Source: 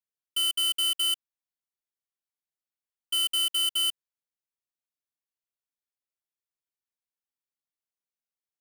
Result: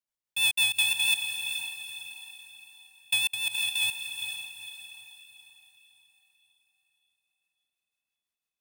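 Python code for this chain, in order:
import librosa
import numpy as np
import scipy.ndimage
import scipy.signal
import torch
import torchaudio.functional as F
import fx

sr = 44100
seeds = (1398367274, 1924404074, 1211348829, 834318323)

y = fx.over_compress(x, sr, threshold_db=-31.0, ratio=-1.0, at=(3.31, 3.81), fade=0.02)
y = fx.rotary(y, sr, hz=6.0)
y = y * np.sin(2.0 * np.pi * 440.0 * np.arange(len(y)) / sr)
y = fx.echo_diffused(y, sr, ms=460, feedback_pct=43, wet_db=-7)
y = F.gain(torch.from_numpy(y), 6.5).numpy()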